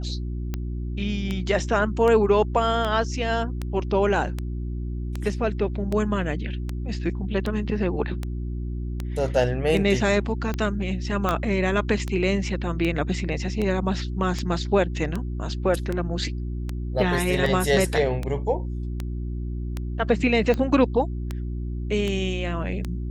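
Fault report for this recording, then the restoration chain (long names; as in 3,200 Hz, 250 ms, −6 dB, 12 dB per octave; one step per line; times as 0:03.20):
mains hum 60 Hz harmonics 6 −29 dBFS
scratch tick 78 rpm −15 dBFS
0:11.29: click −10 dBFS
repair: click removal
hum removal 60 Hz, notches 6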